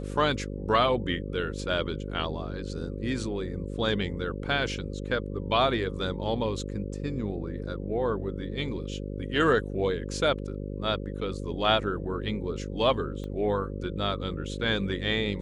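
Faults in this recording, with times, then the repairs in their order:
buzz 50 Hz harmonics 11 -35 dBFS
13.24 s: pop -27 dBFS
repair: de-click; de-hum 50 Hz, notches 11

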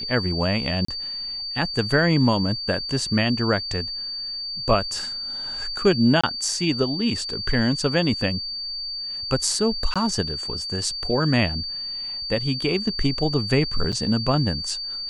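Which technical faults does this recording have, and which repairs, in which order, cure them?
whine 4.6 kHz -28 dBFS
0.85–0.88 s: dropout 34 ms
6.21–6.24 s: dropout 25 ms
9.94–9.96 s: dropout 16 ms
13.92–13.93 s: dropout 6.2 ms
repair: band-stop 4.6 kHz, Q 30; interpolate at 0.85 s, 34 ms; interpolate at 6.21 s, 25 ms; interpolate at 9.94 s, 16 ms; interpolate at 13.92 s, 6.2 ms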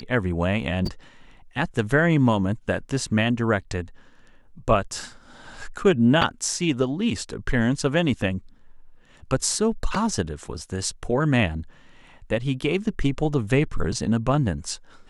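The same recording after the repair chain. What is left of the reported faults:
nothing left

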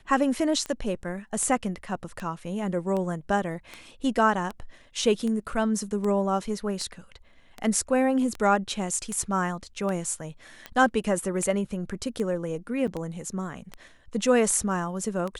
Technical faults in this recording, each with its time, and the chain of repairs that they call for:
tick 78 rpm -20 dBFS
12.87–12.88 s: dropout 6.8 ms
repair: de-click; interpolate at 12.87 s, 6.8 ms

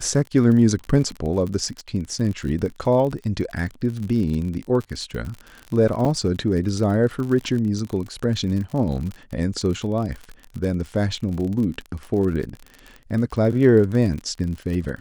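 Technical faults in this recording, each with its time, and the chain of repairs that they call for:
crackle 50 per s -28 dBFS
6.05 s: dropout 3.5 ms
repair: de-click; interpolate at 6.05 s, 3.5 ms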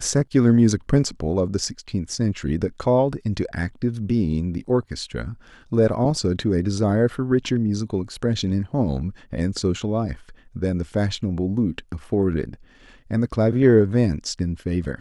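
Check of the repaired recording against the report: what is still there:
nothing left

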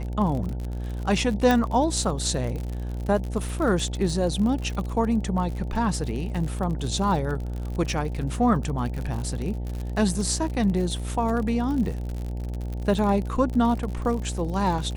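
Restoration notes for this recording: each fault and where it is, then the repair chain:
buzz 60 Hz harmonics 15 -30 dBFS
crackle 58 per s -30 dBFS
1.51 s: pop -9 dBFS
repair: de-click; de-hum 60 Hz, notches 15

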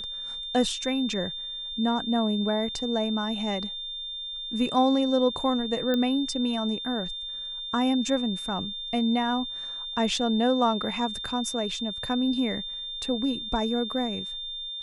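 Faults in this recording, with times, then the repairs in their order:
whine 3.6 kHz -33 dBFS
5.94 s: pop -15 dBFS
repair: de-click; band-stop 3.6 kHz, Q 30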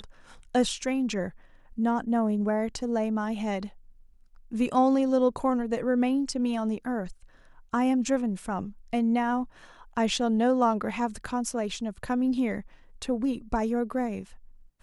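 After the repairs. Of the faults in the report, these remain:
nothing left

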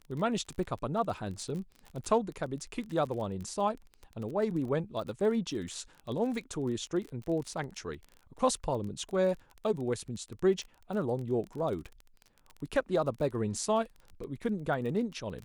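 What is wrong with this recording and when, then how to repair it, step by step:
crackle 27 per s -37 dBFS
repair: de-click

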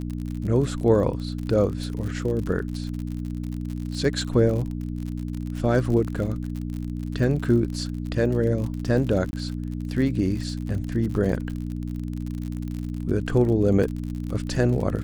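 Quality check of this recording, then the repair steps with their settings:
crackle 55 per s -30 dBFS
hum 60 Hz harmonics 5 -30 dBFS
9.31–9.33 s: dropout 21 ms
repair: de-click; de-hum 60 Hz, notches 5; interpolate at 9.31 s, 21 ms

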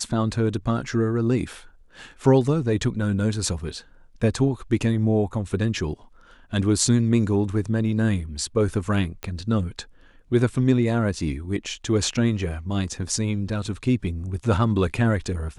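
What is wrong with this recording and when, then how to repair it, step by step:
9.23 s: pop -16 dBFS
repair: de-click

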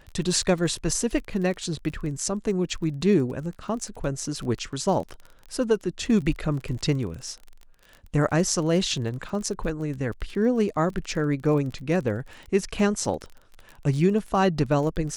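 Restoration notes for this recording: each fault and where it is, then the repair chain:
crackle 28 per s -33 dBFS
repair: de-click

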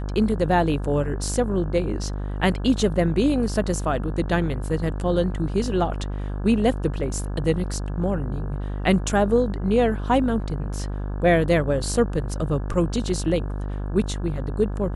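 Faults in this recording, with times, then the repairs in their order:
buzz 50 Hz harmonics 34 -28 dBFS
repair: de-hum 50 Hz, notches 34

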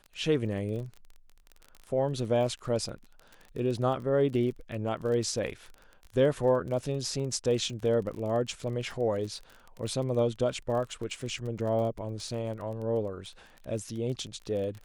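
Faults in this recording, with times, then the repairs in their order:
crackle 28 per s -37 dBFS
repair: de-click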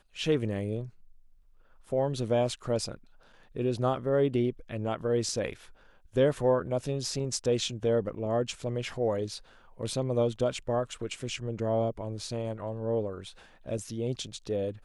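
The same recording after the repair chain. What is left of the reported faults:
nothing left

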